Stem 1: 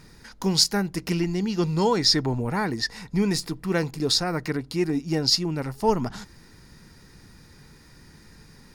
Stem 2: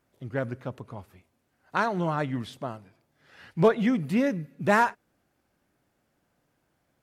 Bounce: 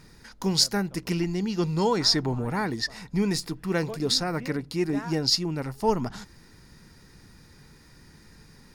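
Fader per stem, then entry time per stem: −2.0, −17.5 decibels; 0.00, 0.25 seconds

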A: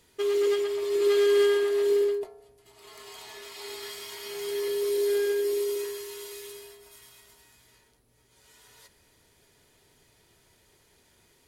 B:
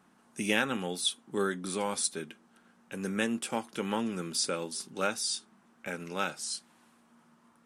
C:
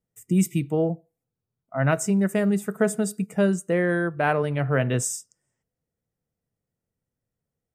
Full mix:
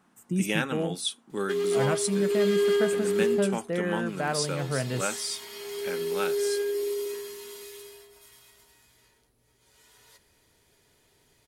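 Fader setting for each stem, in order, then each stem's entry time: −2.0, −0.5, −7.0 decibels; 1.30, 0.00, 0.00 seconds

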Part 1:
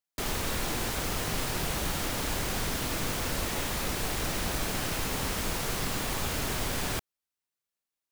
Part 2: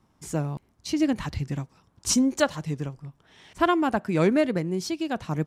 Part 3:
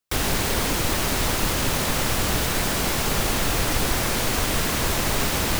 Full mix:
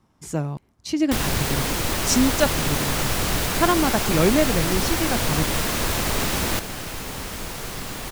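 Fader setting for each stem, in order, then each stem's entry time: −0.5, +2.0, −1.0 decibels; 1.95, 0.00, 1.00 seconds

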